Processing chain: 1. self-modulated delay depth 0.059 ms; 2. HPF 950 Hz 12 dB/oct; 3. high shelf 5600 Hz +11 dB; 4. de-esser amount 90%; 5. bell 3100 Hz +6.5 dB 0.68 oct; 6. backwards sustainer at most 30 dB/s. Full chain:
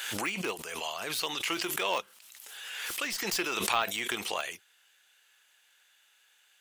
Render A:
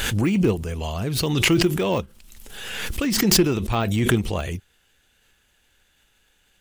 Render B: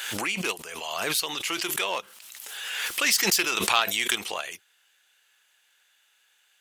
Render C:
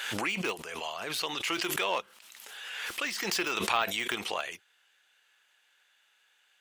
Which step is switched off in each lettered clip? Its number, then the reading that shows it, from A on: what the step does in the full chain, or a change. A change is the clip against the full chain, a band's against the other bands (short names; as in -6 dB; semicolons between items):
2, 125 Hz band +19.0 dB; 4, momentary loudness spread change +2 LU; 3, 8 kHz band -3.5 dB